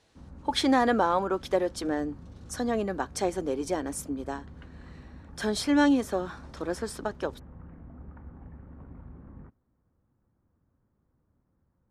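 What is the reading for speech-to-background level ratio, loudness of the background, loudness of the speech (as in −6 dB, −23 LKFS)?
20.0 dB, −48.5 LKFS, −28.5 LKFS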